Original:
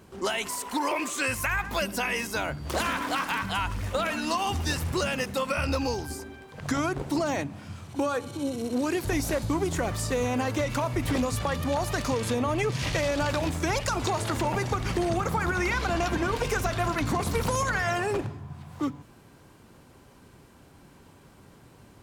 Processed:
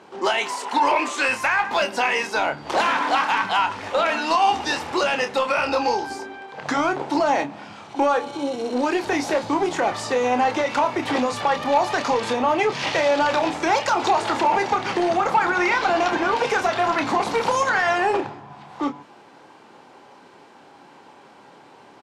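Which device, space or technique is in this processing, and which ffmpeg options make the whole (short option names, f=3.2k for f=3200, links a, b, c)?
intercom: -filter_complex "[0:a]highpass=340,lowpass=4.8k,equalizer=f=840:t=o:w=0.3:g=8.5,asoftclip=type=tanh:threshold=-18.5dB,asplit=2[a][b];[b]adelay=28,volume=-8dB[c];[a][c]amix=inputs=2:normalize=0,volume=7.5dB"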